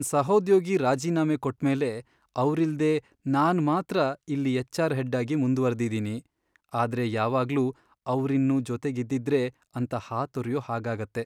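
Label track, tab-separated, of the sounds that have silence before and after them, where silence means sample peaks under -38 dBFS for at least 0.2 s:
2.360000	2.990000	sound
3.260000	6.190000	sound
6.730000	7.710000	sound
8.060000	9.490000	sound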